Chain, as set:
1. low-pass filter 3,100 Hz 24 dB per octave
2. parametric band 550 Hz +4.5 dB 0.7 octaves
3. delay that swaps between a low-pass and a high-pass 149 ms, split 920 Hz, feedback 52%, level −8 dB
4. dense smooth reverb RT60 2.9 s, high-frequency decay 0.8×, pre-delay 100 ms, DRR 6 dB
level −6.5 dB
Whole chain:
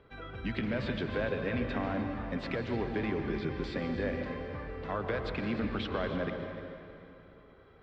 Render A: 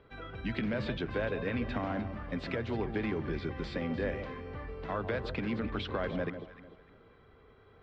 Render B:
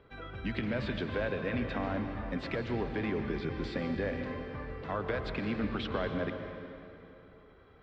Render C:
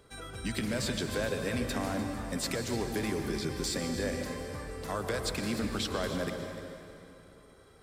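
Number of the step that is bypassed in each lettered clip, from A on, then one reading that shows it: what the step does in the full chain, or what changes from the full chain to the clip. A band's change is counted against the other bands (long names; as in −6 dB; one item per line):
4, echo-to-direct ratio −4.5 dB to −11.0 dB
3, change in momentary loudness spread +1 LU
1, 4 kHz band +8.0 dB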